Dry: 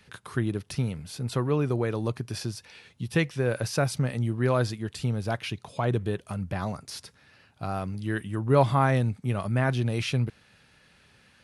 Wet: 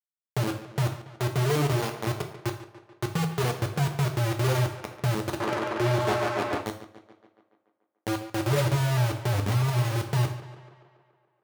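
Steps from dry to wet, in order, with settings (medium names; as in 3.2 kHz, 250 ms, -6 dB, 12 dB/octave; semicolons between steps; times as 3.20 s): dynamic bell 780 Hz, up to -5 dB, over -38 dBFS, Q 0.78; loudest bins only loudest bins 2; 9.33–9.96 s: bass shelf 200 Hz +6 dB; bit crusher 5-bit; compression, threshold -26 dBFS, peak gain reduction 7 dB; sample-rate reducer 7.6 kHz, jitter 0%; tape echo 143 ms, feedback 67%, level -12.5 dB, low-pass 4.8 kHz; 5.40–6.61 s: overdrive pedal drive 35 dB, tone 4.8 kHz, clips at -22.5 dBFS; high-pass 94 Hz; gated-style reverb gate 140 ms falling, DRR 4.5 dB; trim +4.5 dB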